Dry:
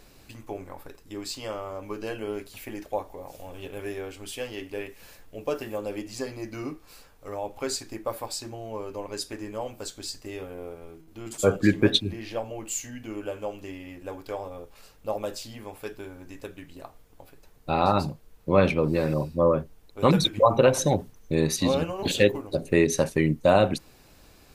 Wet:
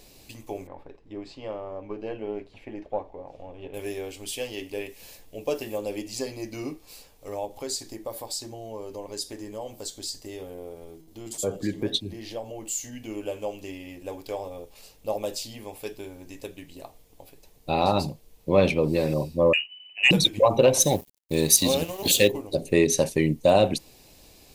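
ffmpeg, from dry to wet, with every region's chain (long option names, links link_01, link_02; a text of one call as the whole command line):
ffmpeg -i in.wav -filter_complex "[0:a]asettb=1/sr,asplit=3[link_01][link_02][link_03];[link_01]atrim=end=0.674[link_04];[link_02]atrim=start=0.67:end=3.74,asetpts=PTS-STARTPTS,afade=type=in:duration=0.004:curve=qsin,afade=type=out:start_time=3.066:duration=0.004:curve=qsin,aeval=exprs='if(lt(val(0),0),0.708*val(0),val(0))':channel_layout=same,lowpass=1800[link_05];[link_03]atrim=start=3.736[link_06];[link_04][link_05]acrossfade=duration=0.004:curve1=hsin:curve2=qsin[link_07];[link_07][link_06]acrossfade=duration=0.004:curve1=qsin:curve2=hsin,asettb=1/sr,asplit=3[link_08][link_09][link_10];[link_08]atrim=end=7.454[link_11];[link_09]atrim=start=7.45:end=12.93,asetpts=PTS-STARTPTS,afade=type=in:duration=0.004:curve=qsin,afade=type=out:start_time=5.476:duration=0.004:curve=qsin,equalizer=frequency=2500:width_type=o:width=0.26:gain=-8,acompressor=threshold=-38dB:ratio=1.5:attack=3.2:release=140:knee=1:detection=peak[link_12];[link_10]atrim=start=12.926[link_13];[link_11][link_12]acrossfade=duration=0.004:curve1=hsin:curve2=qsin[link_14];[link_14][link_13]acrossfade=duration=0.004:curve1=qsin:curve2=hsin,asettb=1/sr,asplit=3[link_15][link_16][link_17];[link_15]atrim=end=19.534[link_18];[link_16]atrim=start=19.53:end=20.11,asetpts=PTS-STARTPTS,afade=type=in:duration=0.004:curve=qsin,afade=type=out:start_time=0.576:duration=0.004:curve=qsin,bandreject=frequency=1500:width=13,lowpass=frequency=2600:width_type=q:width=0.5098,lowpass=frequency=2600:width_type=q:width=0.6013,lowpass=frequency=2600:width_type=q:width=0.9,lowpass=frequency=2600:width_type=q:width=2.563,afreqshift=-3000[link_19];[link_17]atrim=start=20.106[link_20];[link_18][link_19]acrossfade=duration=0.004:curve1=hsin:curve2=qsin[link_21];[link_21][link_20]acrossfade=duration=0.004:curve1=qsin:curve2=hsin,asettb=1/sr,asplit=3[link_22][link_23][link_24];[link_22]atrim=end=20.804[link_25];[link_23]atrim=start=20.8:end=22.28,asetpts=PTS-STARTPTS,afade=type=in:duration=0.004:curve=qsin,afade=type=out:start_time=1.476:duration=0.004:curve=qsin,aemphasis=mode=production:type=50fm,aeval=exprs='sgn(val(0))*max(abs(val(0))-0.00891,0)':channel_layout=same,acrusher=bits=9:mode=log:mix=0:aa=0.000001[link_26];[link_24]atrim=start=22.276[link_27];[link_25][link_26]acrossfade=duration=0.004:curve1=hsin:curve2=qsin[link_28];[link_28][link_27]acrossfade=duration=0.004:curve1=qsin:curve2=hsin,lowshelf=frequency=410:gain=-7,acontrast=41,equalizer=frequency=1400:width_type=o:width=0.93:gain=-14" out.wav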